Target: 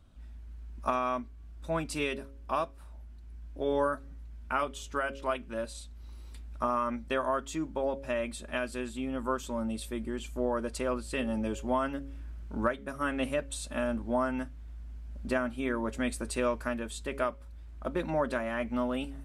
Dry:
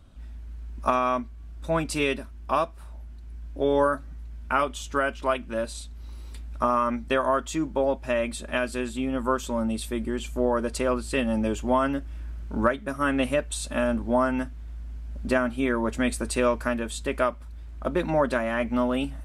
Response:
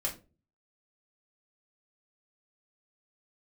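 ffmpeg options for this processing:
-af "bandreject=frequency=137.5:width_type=h:width=4,bandreject=frequency=275:width_type=h:width=4,bandreject=frequency=412.5:width_type=h:width=4,bandreject=frequency=550:width_type=h:width=4,volume=-6.5dB"

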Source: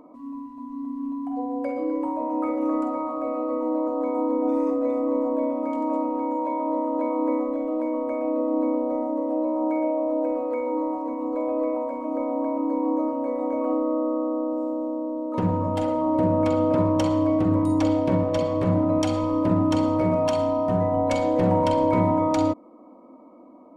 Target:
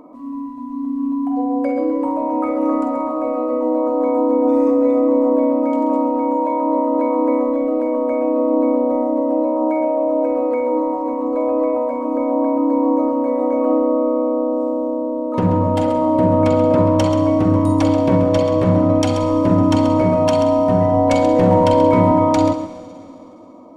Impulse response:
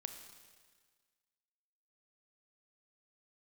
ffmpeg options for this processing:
-filter_complex "[0:a]asplit=2[link_01][link_02];[1:a]atrim=start_sample=2205,asetrate=25578,aresample=44100,adelay=133[link_03];[link_02][link_03]afir=irnorm=-1:irlink=0,volume=-9.5dB[link_04];[link_01][link_04]amix=inputs=2:normalize=0,volume=6.5dB"

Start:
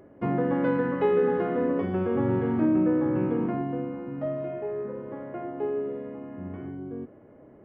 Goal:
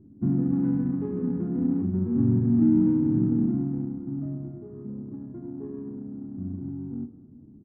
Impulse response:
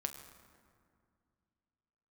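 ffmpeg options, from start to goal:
-filter_complex "[0:a]firequalizer=gain_entry='entry(260,0);entry(530,-30);entry(1400,-23);entry(2200,-29)':delay=0.05:min_phase=1,adynamicsmooth=sensitivity=8:basefreq=1000,asplit=2[link_01][link_02];[1:a]atrim=start_sample=2205,lowpass=2100[link_03];[link_02][link_03]afir=irnorm=-1:irlink=0,volume=0dB[link_04];[link_01][link_04]amix=inputs=2:normalize=0"

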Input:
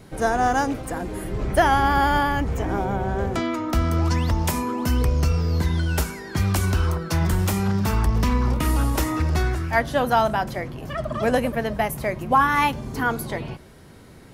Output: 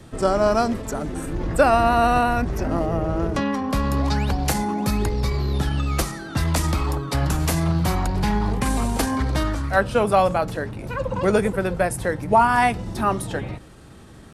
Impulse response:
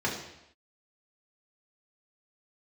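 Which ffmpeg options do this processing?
-filter_complex "[0:a]acrossover=split=130[link_01][link_02];[link_01]acompressor=threshold=-26dB:ratio=4[link_03];[link_03][link_02]amix=inputs=2:normalize=0,asetrate=37084,aresample=44100,atempo=1.18921,volume=2dB"

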